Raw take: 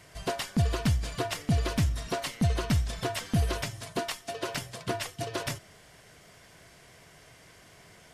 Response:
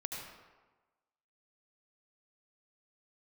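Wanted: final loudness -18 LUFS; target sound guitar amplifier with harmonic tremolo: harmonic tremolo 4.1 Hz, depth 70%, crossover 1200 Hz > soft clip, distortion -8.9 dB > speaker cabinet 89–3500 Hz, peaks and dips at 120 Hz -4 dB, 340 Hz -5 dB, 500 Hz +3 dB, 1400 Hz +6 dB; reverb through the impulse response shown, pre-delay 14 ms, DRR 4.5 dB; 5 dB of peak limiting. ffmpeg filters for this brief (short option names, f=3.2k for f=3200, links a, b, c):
-filter_complex "[0:a]alimiter=limit=-21dB:level=0:latency=1,asplit=2[a][b];[1:a]atrim=start_sample=2205,adelay=14[c];[b][c]afir=irnorm=-1:irlink=0,volume=-5dB[d];[a][d]amix=inputs=2:normalize=0,acrossover=split=1200[e][f];[e]aeval=exprs='val(0)*(1-0.7/2+0.7/2*cos(2*PI*4.1*n/s))':c=same[g];[f]aeval=exprs='val(0)*(1-0.7/2-0.7/2*cos(2*PI*4.1*n/s))':c=same[h];[g][h]amix=inputs=2:normalize=0,asoftclip=threshold=-31.5dB,highpass=89,equalizer=f=120:t=q:w=4:g=-4,equalizer=f=340:t=q:w=4:g=-5,equalizer=f=500:t=q:w=4:g=3,equalizer=f=1.4k:t=q:w=4:g=6,lowpass=f=3.5k:w=0.5412,lowpass=f=3.5k:w=1.3066,volume=22.5dB"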